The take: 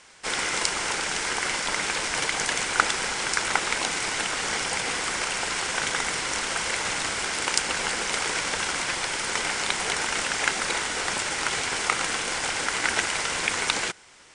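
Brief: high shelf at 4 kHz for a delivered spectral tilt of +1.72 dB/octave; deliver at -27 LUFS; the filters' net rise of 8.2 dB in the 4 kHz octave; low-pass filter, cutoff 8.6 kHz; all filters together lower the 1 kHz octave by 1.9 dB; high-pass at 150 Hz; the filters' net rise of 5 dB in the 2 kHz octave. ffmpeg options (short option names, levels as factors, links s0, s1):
-af "highpass=150,lowpass=8600,equalizer=f=1000:t=o:g=-5.5,equalizer=f=2000:t=o:g=4.5,highshelf=f=4000:g=8.5,equalizer=f=4000:t=o:g=4.5,volume=0.422"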